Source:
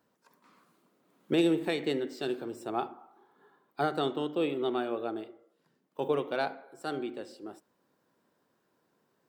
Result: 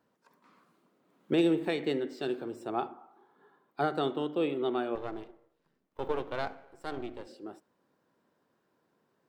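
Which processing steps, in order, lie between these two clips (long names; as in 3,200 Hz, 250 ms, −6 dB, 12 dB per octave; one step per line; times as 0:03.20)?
0:04.95–0:07.27: gain on one half-wave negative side −12 dB
high-shelf EQ 5,200 Hz −8 dB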